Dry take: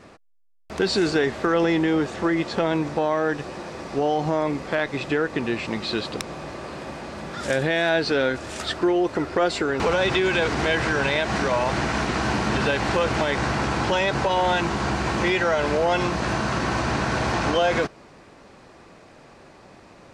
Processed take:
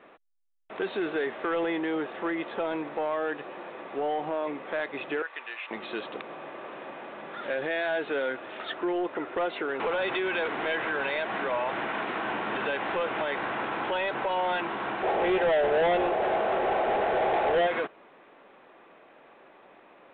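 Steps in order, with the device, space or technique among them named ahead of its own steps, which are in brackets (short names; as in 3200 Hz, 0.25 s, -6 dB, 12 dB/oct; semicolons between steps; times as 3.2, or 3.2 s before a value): 5.22–5.71 HPF 1100 Hz 12 dB/oct; 15.03–17.66 spectral gain 360–870 Hz +12 dB; telephone (BPF 360–3500 Hz; soft clip -17 dBFS, distortion -7 dB; gain -4 dB; A-law 64 kbps 8000 Hz)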